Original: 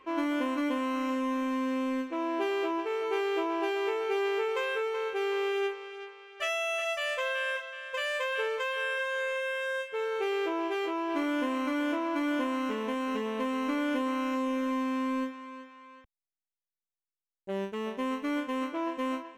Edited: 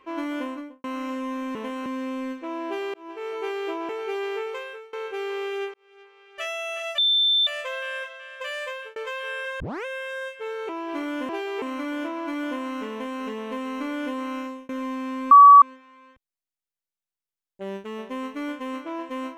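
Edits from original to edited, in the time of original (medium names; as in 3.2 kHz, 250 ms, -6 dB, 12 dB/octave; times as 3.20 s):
0.39–0.84 s: studio fade out
2.63–2.97 s: fade in linear
3.58–3.91 s: move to 11.50 s
4.44–4.95 s: fade out, to -23 dB
5.76–6.42 s: fade in
7.00 s: add tone 3.55 kHz -17 dBFS 0.49 s
8.09–8.49 s: fade out equal-power
9.13 s: tape start 0.25 s
10.22–10.90 s: delete
12.79–13.10 s: copy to 1.55 s
14.26–14.57 s: fade out
15.19–15.50 s: bleep 1.14 kHz -6 dBFS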